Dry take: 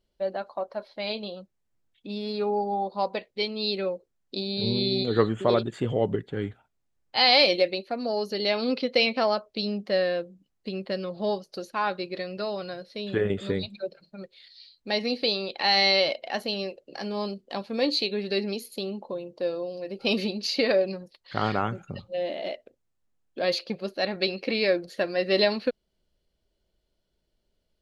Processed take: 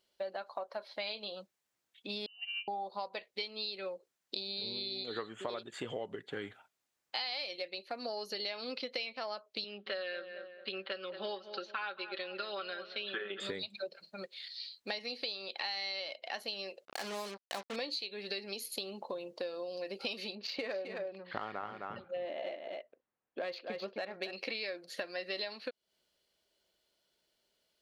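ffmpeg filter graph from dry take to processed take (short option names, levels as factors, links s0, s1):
-filter_complex "[0:a]asettb=1/sr,asplit=3[s0][s1][s2];[s0]atrim=end=2.264[s3];[s1]atrim=start=2.26:end=2.68,asetpts=PTS-STARTPTS,afade=t=in:d=0.004:c=qsin,afade=t=out:st=0.416:d=0.004:c=qsin,agate=range=0.02:threshold=0.0708:ratio=16:release=100:detection=peak,aecho=1:1:5.3:0.97,atrim=end_sample=18522,lowpass=f=2700:t=q:w=0.5098,lowpass=f=2700:t=q:w=0.6013,lowpass=f=2700:t=q:w=0.9,lowpass=f=2700:t=q:w=2.563,afreqshift=-3200[s4];[s2]atrim=start=2.676[s5];[s3][s4]acrossfade=d=0.004:c1=hsin:c2=qsin[s6];[s6][s5]acrossfade=d=0.004:c1=qsin:c2=hsin,asettb=1/sr,asplit=3[s7][s8][s9];[s7]atrim=end=9.644[s10];[s8]atrim=start=9.64:end=13.4,asetpts=PTS-STARTPTS,afade=t=in:d=0.004:c=qsin,afade=t=out:st=3.756:d=0.004:c=qsin,highpass=380,equalizer=f=460:t=q:w=4:g=-5,equalizer=f=670:t=q:w=4:g=-9,equalizer=f=950:t=q:w=4:g=-4,equalizer=f=1400:t=q:w=4:g=7,equalizer=f=2000:t=q:w=4:g=-4,equalizer=f=3200:t=q:w=4:g=4,lowpass=f=3700:w=0.5412,lowpass=f=3700:w=1.3066,aecho=1:1:5.2:0.64,atrim=end_sample=165816,asplit=2[s11][s12];[s12]adelay=222,lowpass=f=2300:p=1,volume=0.178,asplit=2[s13][s14];[s14]adelay=222,lowpass=f=2300:p=1,volume=0.39,asplit=2[s15][s16];[s16]adelay=222,lowpass=f=2300:p=1,volume=0.39,asplit=2[s17][s18];[s18]adelay=222,lowpass=f=2300:p=1,volume=0.39[s19];[s11][s13][s15][s17][s19]amix=inputs=5:normalize=0,atrim=end_sample=165816[s20];[s9]atrim=start=13.396[s21];[s10][s20]acrossfade=d=0.004:c1=hsin:c2=qsin[s22];[s22][s21]acrossfade=d=0.004:c1=qsin:c2=hsin,asettb=1/sr,asplit=3[s23][s24][s25];[s23]atrim=end=16.854[s26];[s24]atrim=start=16.85:end=17.76,asetpts=PTS-STARTPTS,afade=t=in:d=0.004:c=qsin,afade=t=out:st=0.906:d=0.004:c=qsin,highshelf=f=3400:g=-9,bandreject=f=60:t=h:w=6,bandreject=f=120:t=h:w=6,bandreject=f=180:t=h:w=6,bandreject=f=240:t=h:w=6,bandreject=f=300:t=h:w=6,bandreject=f=360:t=h:w=6,bandreject=f=420:t=h:w=6,bandreject=f=480:t=h:w=6,acrusher=bits=5:mix=0:aa=0.5[s27];[s25]atrim=start=17.756[s28];[s26][s27]acrossfade=d=0.004:c1=hsin:c2=qsin[s29];[s29][s28]acrossfade=d=0.004:c1=qsin:c2=hsin,asettb=1/sr,asplit=3[s30][s31][s32];[s30]atrim=end=20.354[s33];[s31]atrim=start=20.35:end=24.33,asetpts=PTS-STARTPTS,afade=t=in:d=0.004:c=qsin,afade=t=out:st=3.976:d=0.004:c=qsin,adynamicsmooth=sensitivity=1.5:basefreq=2900,aemphasis=mode=reproduction:type=75kf,aecho=1:1:261:0.376,atrim=end_sample=175518[s34];[s32]atrim=start=24.326[s35];[s33][s34]acrossfade=d=0.004:c1=hsin:c2=qsin[s36];[s36][s35]acrossfade=d=0.004:c1=qsin:c2=hsin,highpass=f=1100:p=1,acompressor=threshold=0.00794:ratio=10,volume=2"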